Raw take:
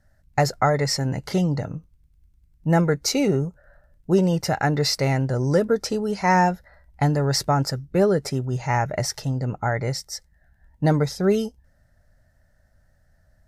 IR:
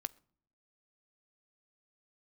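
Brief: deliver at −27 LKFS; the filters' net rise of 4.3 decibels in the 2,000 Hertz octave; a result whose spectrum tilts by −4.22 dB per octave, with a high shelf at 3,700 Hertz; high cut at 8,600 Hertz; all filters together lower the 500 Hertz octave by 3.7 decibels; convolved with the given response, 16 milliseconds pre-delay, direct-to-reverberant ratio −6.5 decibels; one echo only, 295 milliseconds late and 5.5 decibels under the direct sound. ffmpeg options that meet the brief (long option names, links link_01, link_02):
-filter_complex "[0:a]lowpass=8600,equalizer=frequency=500:width_type=o:gain=-5,equalizer=frequency=2000:width_type=o:gain=3.5,highshelf=frequency=3700:gain=8,aecho=1:1:295:0.531,asplit=2[link_01][link_02];[1:a]atrim=start_sample=2205,adelay=16[link_03];[link_02][link_03]afir=irnorm=-1:irlink=0,volume=8.5dB[link_04];[link_01][link_04]amix=inputs=2:normalize=0,volume=-12.5dB"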